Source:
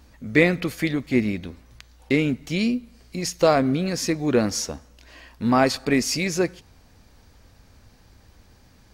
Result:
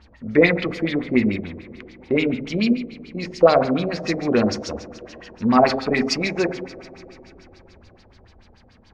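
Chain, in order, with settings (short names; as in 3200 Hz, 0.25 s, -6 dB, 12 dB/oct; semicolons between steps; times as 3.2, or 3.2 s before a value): two-slope reverb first 0.57 s, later 3.8 s, from -16 dB, DRR 3.5 dB; LFO low-pass sine 6.9 Hz 500–5000 Hz; gain -1 dB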